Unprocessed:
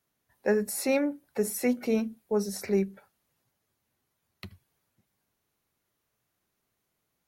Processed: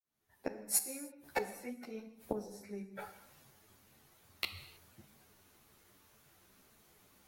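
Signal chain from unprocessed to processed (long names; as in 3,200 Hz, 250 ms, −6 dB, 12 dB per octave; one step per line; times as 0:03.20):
fade in at the beginning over 1.73 s
gate with flip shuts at −30 dBFS, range −32 dB
reverb whose tail is shaped and stops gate 340 ms falling, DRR 8 dB
string-ensemble chorus
level +16.5 dB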